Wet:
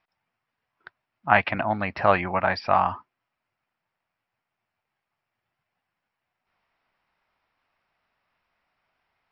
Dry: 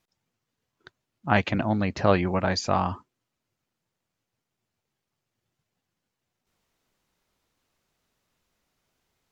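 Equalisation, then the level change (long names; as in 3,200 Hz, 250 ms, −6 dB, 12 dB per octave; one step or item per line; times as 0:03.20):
linear-phase brick-wall low-pass 5,700 Hz
flat-topped bell 1,300 Hz +11.5 dB 2.4 octaves
−6.0 dB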